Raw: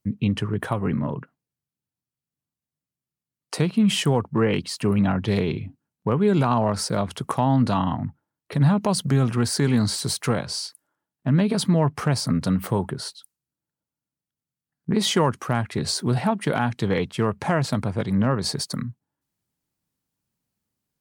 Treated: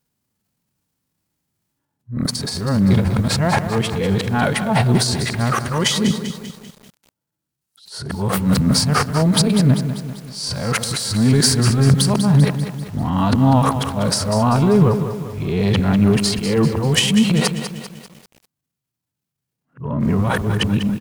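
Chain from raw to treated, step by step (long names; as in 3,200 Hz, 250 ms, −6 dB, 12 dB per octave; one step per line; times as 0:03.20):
played backwards from end to start
in parallel at +2.5 dB: brickwall limiter −18.5 dBFS, peak gain reduction 11 dB
on the sum: harmonic and percussive parts rebalanced harmonic +9 dB
on a send: repeating echo 122 ms, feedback 31%, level −23 dB
on the sum: transient designer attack −9 dB, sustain +11 dB
feedback echo at a low word length 196 ms, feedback 55%, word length 5 bits, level −9.5 dB
level −7 dB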